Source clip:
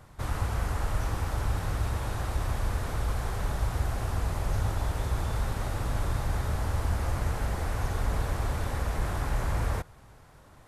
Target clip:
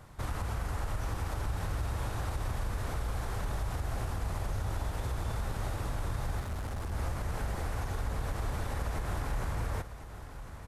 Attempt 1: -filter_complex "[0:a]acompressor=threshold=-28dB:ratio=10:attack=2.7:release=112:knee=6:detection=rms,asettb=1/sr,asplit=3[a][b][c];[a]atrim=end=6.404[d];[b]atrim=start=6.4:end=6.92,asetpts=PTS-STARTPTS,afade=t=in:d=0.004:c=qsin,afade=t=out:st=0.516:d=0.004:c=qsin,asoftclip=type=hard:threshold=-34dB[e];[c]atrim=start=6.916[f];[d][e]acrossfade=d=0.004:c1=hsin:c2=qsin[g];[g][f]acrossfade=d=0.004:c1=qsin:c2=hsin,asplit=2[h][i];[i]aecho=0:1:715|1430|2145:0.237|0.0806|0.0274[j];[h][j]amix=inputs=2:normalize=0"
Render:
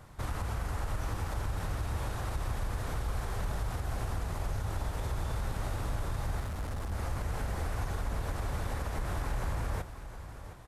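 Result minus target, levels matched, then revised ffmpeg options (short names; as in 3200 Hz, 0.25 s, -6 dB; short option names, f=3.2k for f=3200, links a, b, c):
echo 0.337 s early
-filter_complex "[0:a]acompressor=threshold=-28dB:ratio=10:attack=2.7:release=112:knee=6:detection=rms,asettb=1/sr,asplit=3[a][b][c];[a]atrim=end=6.404[d];[b]atrim=start=6.4:end=6.92,asetpts=PTS-STARTPTS,afade=t=in:d=0.004:c=qsin,afade=t=out:st=0.516:d=0.004:c=qsin,asoftclip=type=hard:threshold=-34dB[e];[c]atrim=start=6.916[f];[d][e]acrossfade=d=0.004:c1=hsin:c2=qsin[g];[g][f]acrossfade=d=0.004:c1=qsin:c2=hsin,asplit=2[h][i];[i]aecho=0:1:1052|2104|3156:0.237|0.0806|0.0274[j];[h][j]amix=inputs=2:normalize=0"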